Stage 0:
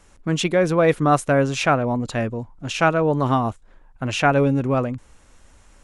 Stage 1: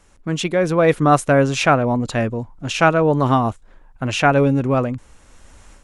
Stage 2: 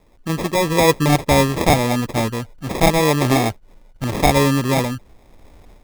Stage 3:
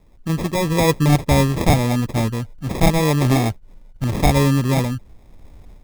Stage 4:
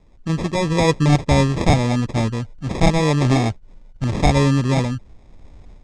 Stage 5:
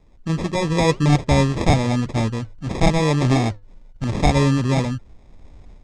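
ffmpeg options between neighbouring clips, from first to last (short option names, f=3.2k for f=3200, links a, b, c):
-af "dynaudnorm=f=520:g=3:m=11.5dB,volume=-1dB"
-af "acrusher=samples=30:mix=1:aa=0.000001"
-af "bass=f=250:g=8,treble=f=4k:g=1,volume=-4dB"
-af "lowpass=f=7.7k:w=0.5412,lowpass=f=7.7k:w=1.3066"
-af "flanger=delay=2.5:depth=2.5:regen=-88:speed=1.8:shape=sinusoidal,volume=3.5dB"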